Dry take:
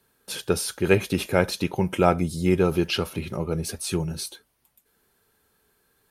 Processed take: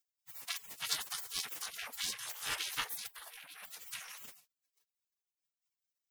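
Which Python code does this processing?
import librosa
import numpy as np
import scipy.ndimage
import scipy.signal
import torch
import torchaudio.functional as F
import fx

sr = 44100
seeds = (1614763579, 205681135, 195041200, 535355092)

y = fx.lower_of_two(x, sr, delay_ms=3.3)
y = fx.spec_gate(y, sr, threshold_db=-30, keep='weak')
y = fx.peak_eq(y, sr, hz=6200.0, db=-12.5, octaves=1.1, at=(3.07, 3.66))
y = y * 10.0 ** (8.0 / 20.0)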